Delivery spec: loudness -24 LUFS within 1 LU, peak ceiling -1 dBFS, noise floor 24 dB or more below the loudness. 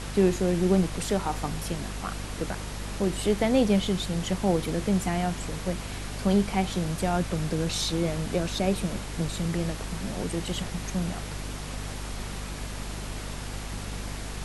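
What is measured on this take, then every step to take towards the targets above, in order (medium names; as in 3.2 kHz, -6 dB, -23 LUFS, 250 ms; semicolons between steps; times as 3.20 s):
hum 50 Hz; highest harmonic 250 Hz; hum level -35 dBFS; noise floor -36 dBFS; noise floor target -53 dBFS; loudness -29.0 LUFS; peak level -10.5 dBFS; loudness target -24.0 LUFS
-> de-hum 50 Hz, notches 5; noise print and reduce 17 dB; trim +5 dB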